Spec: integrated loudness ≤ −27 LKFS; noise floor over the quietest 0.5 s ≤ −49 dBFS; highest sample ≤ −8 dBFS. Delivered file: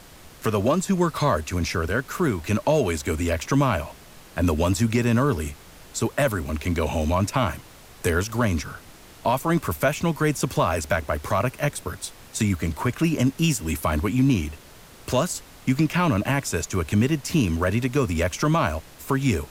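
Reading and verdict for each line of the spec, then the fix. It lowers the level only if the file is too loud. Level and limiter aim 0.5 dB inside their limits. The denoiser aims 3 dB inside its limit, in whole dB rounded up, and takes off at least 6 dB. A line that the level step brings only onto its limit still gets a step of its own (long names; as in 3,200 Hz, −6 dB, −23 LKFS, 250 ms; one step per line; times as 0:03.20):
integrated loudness −24.0 LKFS: out of spec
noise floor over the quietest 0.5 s −47 dBFS: out of spec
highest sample −10.5 dBFS: in spec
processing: level −3.5 dB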